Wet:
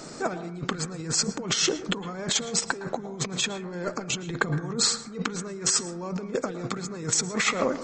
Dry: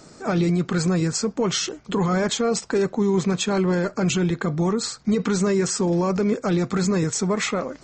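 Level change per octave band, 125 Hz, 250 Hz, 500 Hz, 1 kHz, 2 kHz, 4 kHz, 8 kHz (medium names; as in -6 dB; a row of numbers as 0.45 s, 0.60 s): -10.0 dB, -11.0 dB, -9.0 dB, -4.5 dB, -0.5 dB, +2.0 dB, +2.5 dB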